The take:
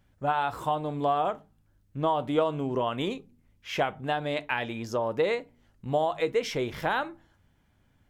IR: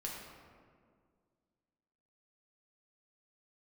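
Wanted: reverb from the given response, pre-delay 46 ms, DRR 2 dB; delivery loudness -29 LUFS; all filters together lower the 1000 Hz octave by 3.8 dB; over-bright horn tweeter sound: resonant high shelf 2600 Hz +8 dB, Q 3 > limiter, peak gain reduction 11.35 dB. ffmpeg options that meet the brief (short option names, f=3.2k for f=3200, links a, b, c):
-filter_complex "[0:a]equalizer=f=1k:t=o:g=-4,asplit=2[a][b];[1:a]atrim=start_sample=2205,adelay=46[c];[b][c]afir=irnorm=-1:irlink=0,volume=-2dB[d];[a][d]amix=inputs=2:normalize=0,highshelf=f=2.6k:t=q:w=3:g=8,volume=3dB,alimiter=limit=-19.5dB:level=0:latency=1"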